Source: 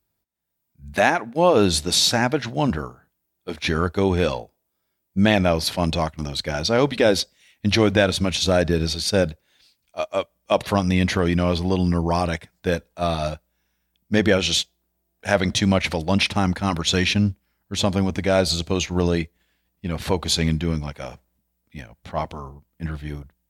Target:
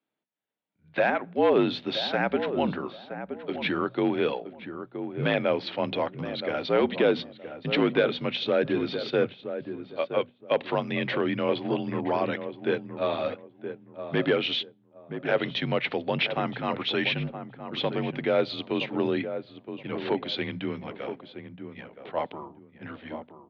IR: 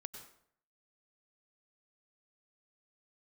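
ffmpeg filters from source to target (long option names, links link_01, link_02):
-filter_complex "[0:a]equalizer=frequency=1300:width=0.53:gain=-3.5,bandreject=frequency=60:width_type=h:width=6,bandreject=frequency=120:width_type=h:width=6,bandreject=frequency=180:width_type=h:width=6,bandreject=frequency=240:width_type=h:width=6,bandreject=frequency=300:width_type=h:width=6,asplit=2[link_01][link_02];[link_02]alimiter=limit=-14.5dB:level=0:latency=1:release=282,volume=-1.5dB[link_03];[link_01][link_03]amix=inputs=2:normalize=0,aeval=exprs='0.447*(abs(mod(val(0)/0.447+3,4)-2)-1)':channel_layout=same,asplit=2[link_04][link_05];[link_05]adelay=971,lowpass=frequency=1100:poles=1,volume=-8.5dB,asplit=2[link_06][link_07];[link_07]adelay=971,lowpass=frequency=1100:poles=1,volume=0.26,asplit=2[link_08][link_09];[link_09]adelay=971,lowpass=frequency=1100:poles=1,volume=0.26[link_10];[link_04][link_06][link_08][link_10]amix=inputs=4:normalize=0,highpass=frequency=270:width_type=q:width=0.5412,highpass=frequency=270:width_type=q:width=1.307,lowpass=frequency=3500:width_type=q:width=0.5176,lowpass=frequency=3500:width_type=q:width=0.7071,lowpass=frequency=3500:width_type=q:width=1.932,afreqshift=-56,volume=-5.5dB"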